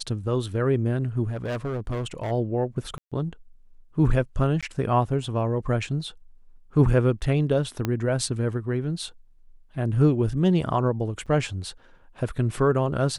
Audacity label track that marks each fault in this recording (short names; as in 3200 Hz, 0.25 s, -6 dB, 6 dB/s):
1.270000	2.320000	clipped -25 dBFS
2.980000	3.120000	gap 0.136 s
4.610000	4.630000	gap 16 ms
7.850000	7.850000	pop -12 dBFS
11.260000	11.270000	gap 6.3 ms